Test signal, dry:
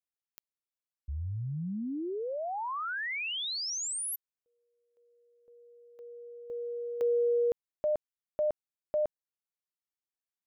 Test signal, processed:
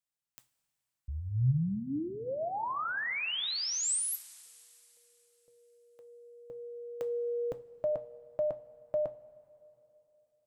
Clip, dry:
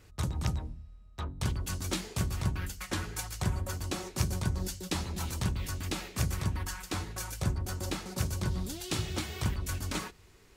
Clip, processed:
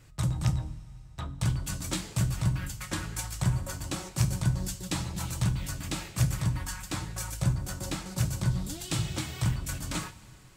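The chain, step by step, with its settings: graphic EQ with 31 bands 125 Hz +12 dB, 400 Hz -7 dB, 8 kHz +5 dB; two-slope reverb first 0.27 s, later 3.2 s, from -18 dB, DRR 8.5 dB

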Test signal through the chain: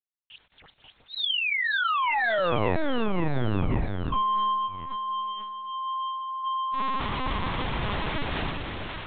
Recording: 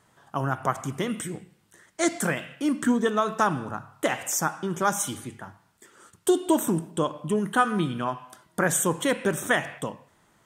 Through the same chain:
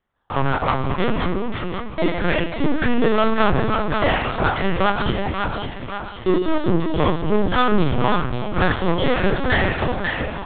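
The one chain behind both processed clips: spectrogram pixelated in time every 50 ms; waveshaping leveller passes 5; on a send: two-band feedback delay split 770 Hz, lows 372 ms, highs 537 ms, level -4.5 dB; on the sum: LPC vocoder at 8 kHz pitch kept; trim -4 dB

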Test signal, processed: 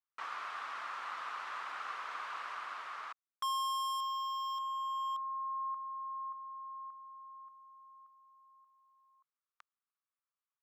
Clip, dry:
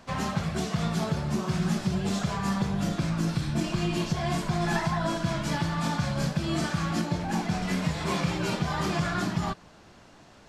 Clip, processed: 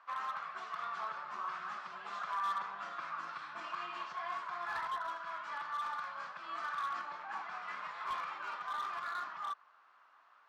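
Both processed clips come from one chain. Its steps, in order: ladder band-pass 1.3 kHz, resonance 65%; overload inside the chain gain 35.5 dB; gain riding within 5 dB 2 s; trim +2.5 dB

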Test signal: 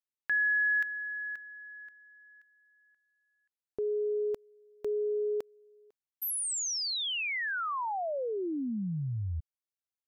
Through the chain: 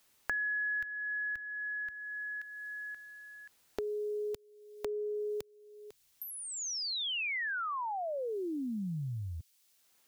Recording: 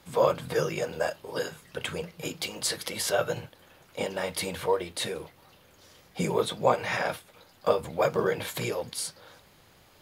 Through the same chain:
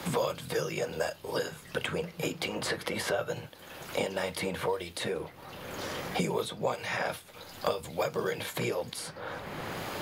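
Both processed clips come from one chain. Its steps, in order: three bands compressed up and down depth 100%; trim -3.5 dB

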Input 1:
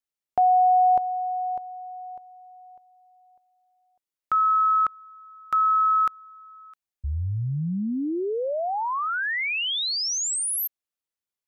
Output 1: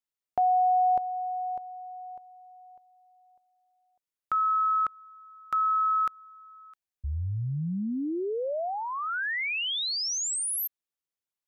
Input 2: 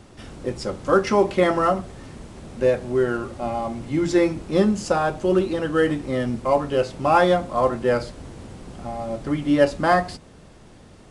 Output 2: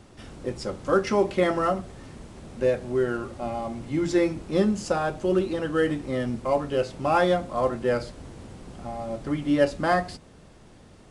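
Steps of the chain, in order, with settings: dynamic bell 970 Hz, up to -3 dB, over -31 dBFS, Q 2; trim -3.5 dB

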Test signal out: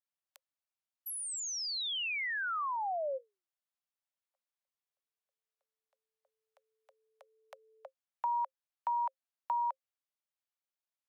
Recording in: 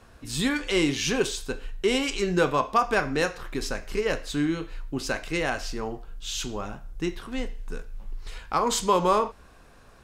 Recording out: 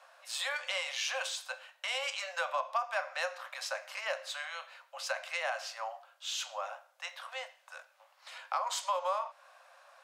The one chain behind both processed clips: Chebyshev high-pass 530 Hz, order 10; treble shelf 4.1 kHz -6.5 dB; compression 3:1, threshold -32 dBFS

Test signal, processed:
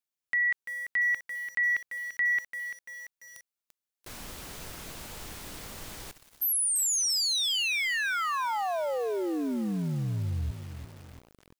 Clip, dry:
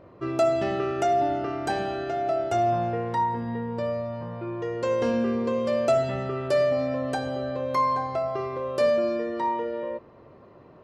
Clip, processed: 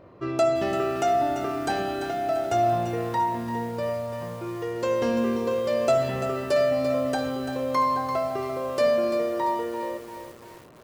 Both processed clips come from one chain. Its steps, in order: treble shelf 3.2 kHz +3.5 dB; bit-crushed delay 341 ms, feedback 55%, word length 7-bit, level -9 dB

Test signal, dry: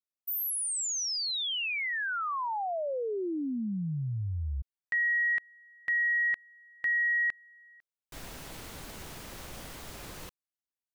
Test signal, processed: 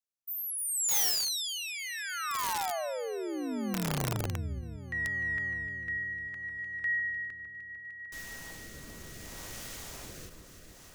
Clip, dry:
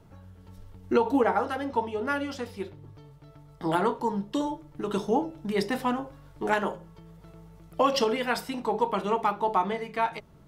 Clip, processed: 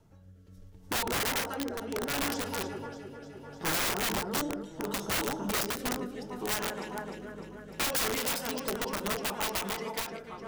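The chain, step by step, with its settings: in parallel at +1 dB: gain riding within 4 dB 2 s; on the sum: peaking EQ 6.3 kHz +5.5 dB 0.68 oct; on a send: echo whose repeats swap between lows and highs 151 ms, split 1.9 kHz, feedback 86%, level -7.5 dB; on the sum: rotary cabinet horn 0.7 Hz; integer overflow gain 16.5 dB; treble shelf 9.7 kHz +6 dB; endings held to a fixed fall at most 110 dB/s; trim -9 dB

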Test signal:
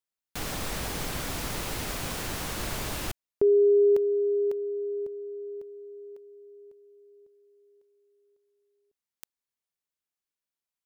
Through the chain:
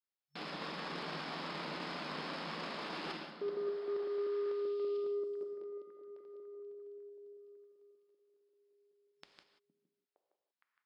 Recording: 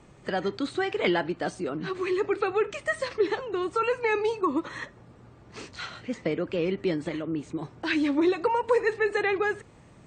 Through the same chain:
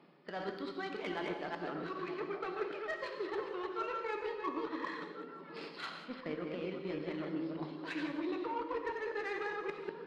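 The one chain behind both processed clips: chunks repeated in reverse 194 ms, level -3.5 dB; FFT band-pass 140–5400 Hz; dynamic bell 1.1 kHz, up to +6 dB, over -43 dBFS, Q 1.8; reverse; compression 4:1, threshold -36 dBFS; reverse; Chebyshev shaper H 3 -22 dB, 7 -30 dB, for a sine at -23 dBFS; on a send: repeats whose band climbs or falls 463 ms, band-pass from 210 Hz, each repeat 1.4 oct, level -6 dB; on the sum: gated-style reverb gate 210 ms flat, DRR 5 dB; trim -1.5 dB

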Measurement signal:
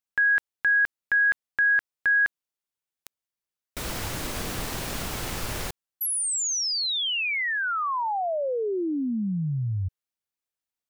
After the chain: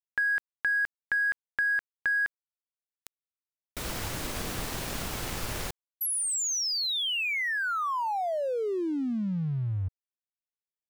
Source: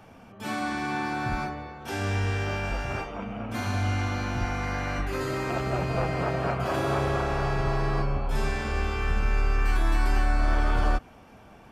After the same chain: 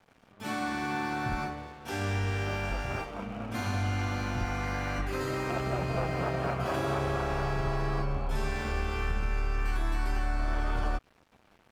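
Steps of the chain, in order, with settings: compression 5:1, threshold -23 dBFS; crossover distortion -48.5 dBFS; trim -1.5 dB

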